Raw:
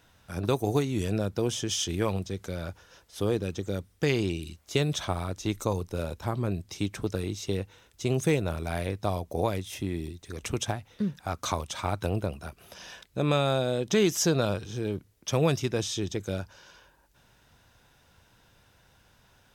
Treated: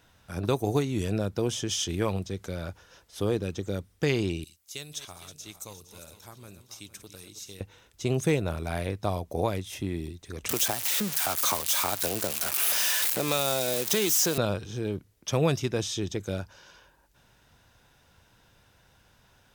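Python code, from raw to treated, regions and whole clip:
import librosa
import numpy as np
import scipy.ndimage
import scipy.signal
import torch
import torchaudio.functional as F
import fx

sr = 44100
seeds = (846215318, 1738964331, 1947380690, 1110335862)

y = fx.chain(x, sr, fx.reverse_delay_fb(ms=231, feedback_pct=61, wet_db=-11.0),
    fx.pre_emphasis(coefficient=0.9), at=(4.44, 7.61))
y = fx.chain(y, sr, fx.crossing_spikes(level_db=-18.5),
    fx.highpass(hz=370.0, slope=6),
    fx.band_squash(depth_pct=70), at=(10.49, 14.38))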